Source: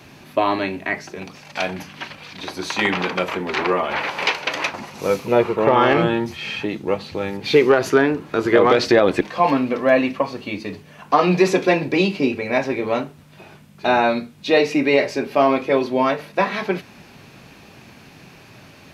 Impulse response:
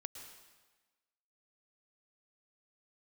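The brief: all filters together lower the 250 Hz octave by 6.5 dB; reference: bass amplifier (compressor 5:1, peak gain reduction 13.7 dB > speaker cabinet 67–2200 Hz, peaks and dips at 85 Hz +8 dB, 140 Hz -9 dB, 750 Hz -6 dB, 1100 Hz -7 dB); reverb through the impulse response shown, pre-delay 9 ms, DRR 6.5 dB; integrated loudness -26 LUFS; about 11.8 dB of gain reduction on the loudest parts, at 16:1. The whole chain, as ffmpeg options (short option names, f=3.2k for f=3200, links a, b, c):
-filter_complex "[0:a]equalizer=f=250:t=o:g=-8.5,acompressor=threshold=-23dB:ratio=16,asplit=2[a][b];[1:a]atrim=start_sample=2205,adelay=9[c];[b][c]afir=irnorm=-1:irlink=0,volume=-3dB[d];[a][d]amix=inputs=2:normalize=0,acompressor=threshold=-35dB:ratio=5,highpass=f=67:w=0.5412,highpass=f=67:w=1.3066,equalizer=f=85:t=q:w=4:g=8,equalizer=f=140:t=q:w=4:g=-9,equalizer=f=750:t=q:w=4:g=-6,equalizer=f=1.1k:t=q:w=4:g=-7,lowpass=f=2.2k:w=0.5412,lowpass=f=2.2k:w=1.3066,volume=15dB"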